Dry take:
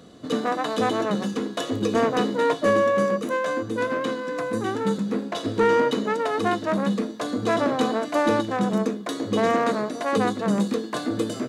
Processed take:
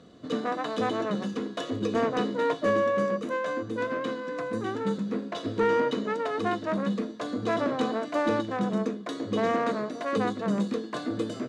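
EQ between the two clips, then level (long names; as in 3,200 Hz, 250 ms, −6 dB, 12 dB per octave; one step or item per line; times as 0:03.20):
high-frequency loss of the air 64 metres
notch filter 830 Hz, Q 12
−4.5 dB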